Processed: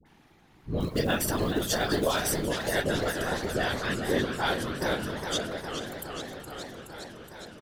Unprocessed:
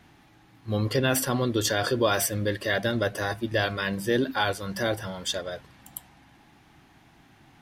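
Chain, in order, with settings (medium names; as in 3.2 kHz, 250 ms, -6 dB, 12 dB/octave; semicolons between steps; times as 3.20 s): whisper effect; phase dispersion highs, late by 58 ms, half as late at 830 Hz; 0.80–2.21 s: companded quantiser 6-bit; feedback delay 480 ms, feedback 51%, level -18 dB; modulated delay 416 ms, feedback 77%, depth 185 cents, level -8.5 dB; trim -3 dB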